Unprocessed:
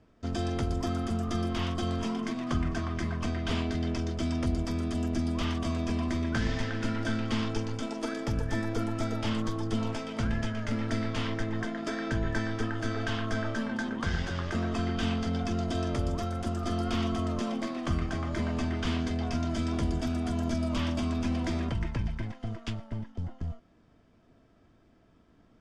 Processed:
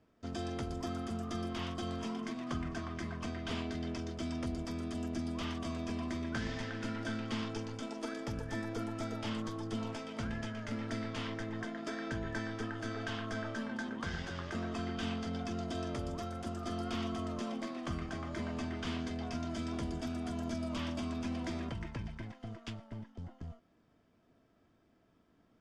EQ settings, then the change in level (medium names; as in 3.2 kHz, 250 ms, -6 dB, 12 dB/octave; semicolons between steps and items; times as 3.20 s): bass shelf 79 Hz -10 dB; -6.0 dB